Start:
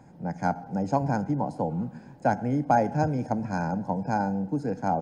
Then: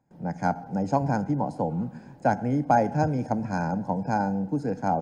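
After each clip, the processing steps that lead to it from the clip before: gate with hold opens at -42 dBFS; trim +1 dB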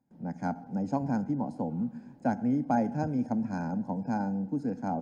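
peaking EQ 240 Hz +11.5 dB 0.55 oct; trim -9 dB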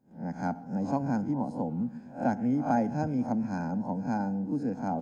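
reverse spectral sustain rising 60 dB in 0.33 s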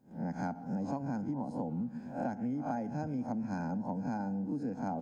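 compression 6:1, threshold -36 dBFS, peak gain reduction 14 dB; trim +3 dB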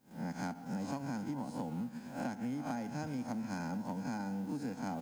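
formants flattened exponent 0.6; trim -3 dB

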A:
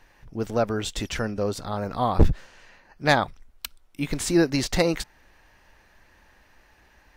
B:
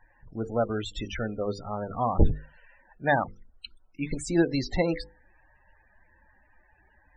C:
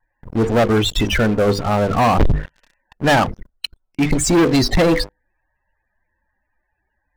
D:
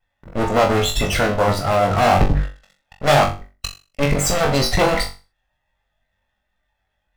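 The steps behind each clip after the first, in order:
hum notches 50/100/150/200/250/300/350/400/450/500 Hz; loudest bins only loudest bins 32; trim -2.5 dB
waveshaping leveller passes 5; vibrato 0.38 Hz 7.9 cents
comb filter that takes the minimum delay 1.5 ms; on a send: flutter echo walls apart 3.6 m, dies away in 0.31 s; on the sum: trim -1 dB

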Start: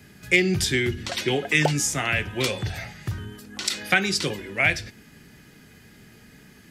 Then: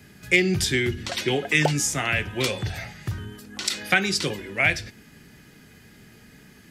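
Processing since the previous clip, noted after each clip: no audible change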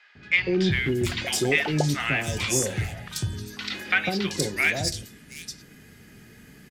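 in parallel at -11.5 dB: wavefolder -20.5 dBFS; on the sum: three bands offset in time mids, lows, highs 150/720 ms, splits 850/4200 Hz; trim -1 dB

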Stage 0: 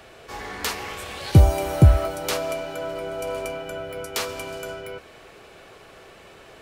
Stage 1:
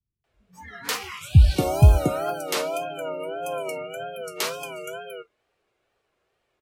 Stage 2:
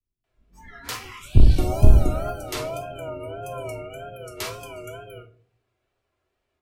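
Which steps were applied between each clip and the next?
spectral noise reduction 27 dB; wow and flutter 120 cents; bands offset in time lows, highs 240 ms, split 190 Hz
octave divider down 2 oct, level +4 dB; on a send at -4.5 dB: reverberation RT60 0.45 s, pre-delay 3 ms; on the sum: trim -5.5 dB

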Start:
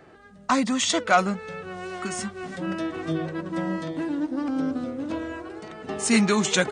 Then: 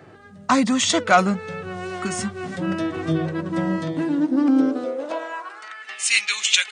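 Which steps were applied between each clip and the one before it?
high-pass sweep 100 Hz -> 2.6 kHz, 3.85–6.08 s; trim +3.5 dB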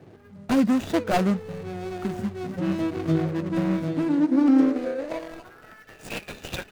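median filter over 41 samples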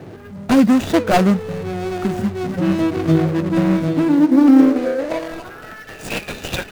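companding laws mixed up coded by mu; trim +7.5 dB

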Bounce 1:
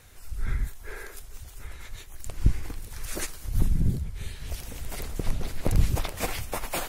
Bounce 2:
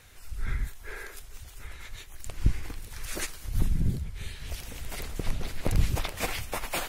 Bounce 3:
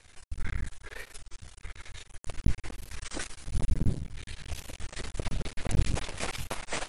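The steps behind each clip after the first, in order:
peaking EQ 2.6 kHz +4.5 dB 2.2 oct; trim -2.5 dB
half-wave rectifier; brick-wall FIR low-pass 11 kHz; warped record 33 1/3 rpm, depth 250 cents; trim +2 dB

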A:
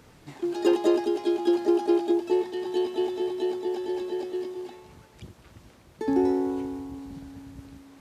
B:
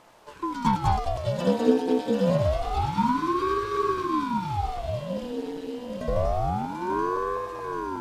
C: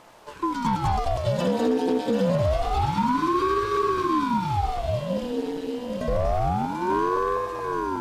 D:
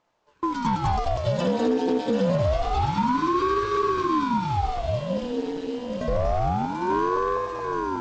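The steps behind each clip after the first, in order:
backward echo that repeats 398 ms, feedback 80%, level -9 dB; thinning echo 739 ms, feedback 63%, high-pass 590 Hz, level -3 dB; ring modulator with a swept carrier 430 Hz, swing 80%, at 0.27 Hz; trim +1.5 dB
peak limiter -17.5 dBFS, peak gain reduction 9.5 dB; hard clipper -19.5 dBFS, distortion -26 dB; trim +4 dB
gate with hold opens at -26 dBFS; steep low-pass 7.4 kHz 48 dB/octave

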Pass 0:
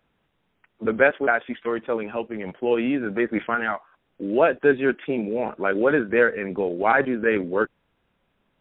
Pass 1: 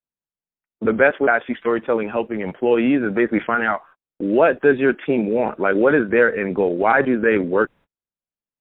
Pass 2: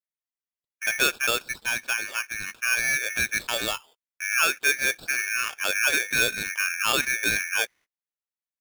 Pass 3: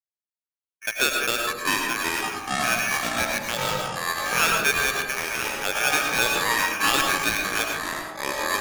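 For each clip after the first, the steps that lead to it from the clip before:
gate -46 dBFS, range -37 dB; peaking EQ 3.2 kHz -3 dB; in parallel at +0.5 dB: peak limiter -15.5 dBFS, peak gain reduction 11 dB
polarity switched at an audio rate 2 kHz; trim -8 dB
Chebyshev shaper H 4 -35 dB, 7 -19 dB, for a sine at -9.5 dBFS; ever faster or slower copies 239 ms, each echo -6 st, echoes 3; algorithmic reverb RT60 0.89 s, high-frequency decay 0.3×, pre-delay 65 ms, DRR 1.5 dB

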